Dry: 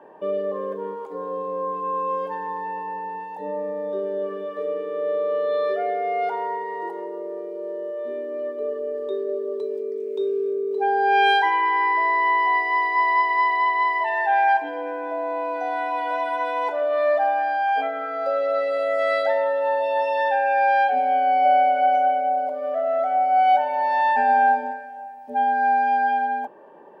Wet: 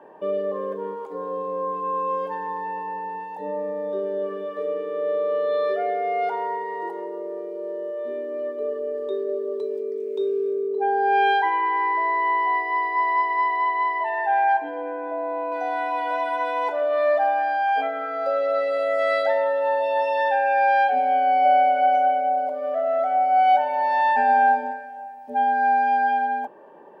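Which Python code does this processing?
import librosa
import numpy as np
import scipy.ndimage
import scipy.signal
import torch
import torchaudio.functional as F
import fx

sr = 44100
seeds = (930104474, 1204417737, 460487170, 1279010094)

y = fx.high_shelf(x, sr, hz=2600.0, db=-12.0, at=(10.67, 15.52))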